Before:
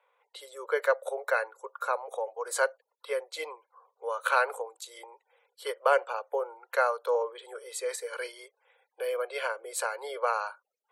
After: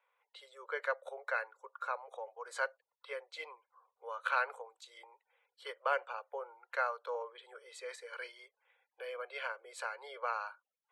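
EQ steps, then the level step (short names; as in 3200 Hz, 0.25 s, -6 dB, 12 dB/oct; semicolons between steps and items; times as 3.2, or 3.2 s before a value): LPF 2400 Hz 12 dB/oct; tilt +4.5 dB/oct; -8.0 dB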